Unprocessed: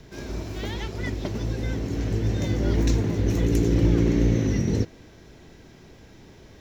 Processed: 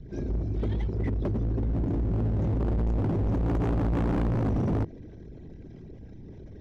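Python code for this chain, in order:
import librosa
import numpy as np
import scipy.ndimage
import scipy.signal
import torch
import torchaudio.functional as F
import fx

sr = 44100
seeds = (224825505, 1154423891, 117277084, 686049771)

y = fx.envelope_sharpen(x, sr, power=2.0)
y = np.clip(10.0 ** (28.5 / 20.0) * y, -1.0, 1.0) / 10.0 ** (28.5 / 20.0)
y = y * 10.0 ** (4.5 / 20.0)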